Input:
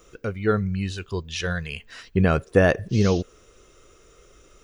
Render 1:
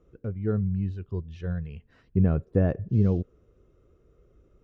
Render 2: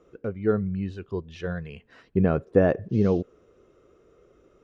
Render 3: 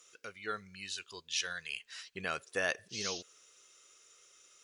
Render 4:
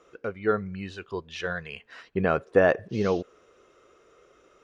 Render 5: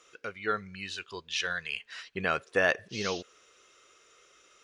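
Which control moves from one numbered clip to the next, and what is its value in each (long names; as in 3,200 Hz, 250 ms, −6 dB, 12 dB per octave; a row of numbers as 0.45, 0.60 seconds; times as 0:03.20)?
resonant band-pass, frequency: 100, 300, 7,400, 820, 2,800 Hertz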